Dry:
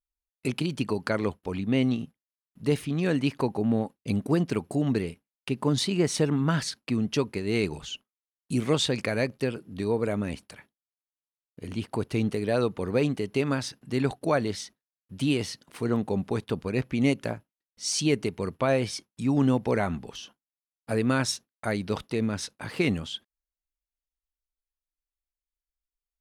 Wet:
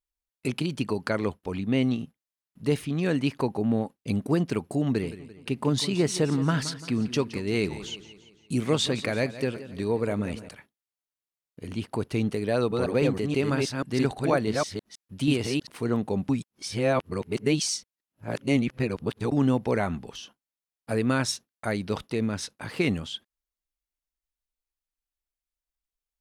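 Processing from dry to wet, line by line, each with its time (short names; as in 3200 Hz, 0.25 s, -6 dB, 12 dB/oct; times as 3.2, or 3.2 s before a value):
4.85–10.49 warbling echo 0.171 s, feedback 49%, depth 91 cents, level -14.5 dB
12.54–15.67 reverse delay 0.161 s, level -2.5 dB
16.29–19.32 reverse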